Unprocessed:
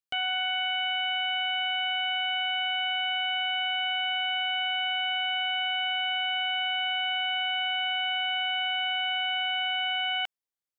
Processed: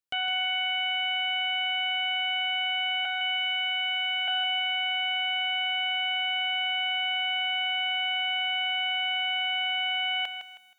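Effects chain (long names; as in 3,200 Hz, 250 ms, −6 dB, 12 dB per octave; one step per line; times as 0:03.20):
0:03.05–0:04.28: Butterworth high-pass 740 Hz 72 dB per octave
feedback echo at a low word length 159 ms, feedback 35%, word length 10 bits, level −8.5 dB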